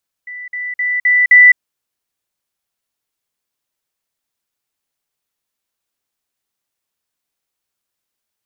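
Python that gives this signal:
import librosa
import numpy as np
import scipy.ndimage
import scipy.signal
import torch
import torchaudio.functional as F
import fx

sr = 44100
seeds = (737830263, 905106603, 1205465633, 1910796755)

y = fx.level_ladder(sr, hz=1980.0, from_db=-26.5, step_db=6.0, steps=5, dwell_s=0.21, gap_s=0.05)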